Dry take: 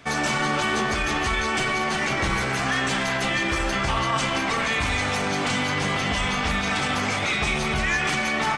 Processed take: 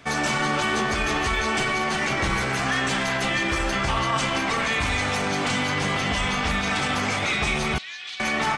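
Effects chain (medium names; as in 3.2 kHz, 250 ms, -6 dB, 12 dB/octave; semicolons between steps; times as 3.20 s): 0.99–1.64 s: mobile phone buzz -35 dBFS; 7.78–8.20 s: band-pass filter 3.8 kHz, Q 3.8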